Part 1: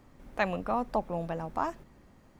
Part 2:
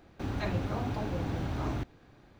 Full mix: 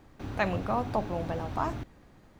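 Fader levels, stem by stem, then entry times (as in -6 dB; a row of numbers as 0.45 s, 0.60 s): 0.0 dB, -3.5 dB; 0.00 s, 0.00 s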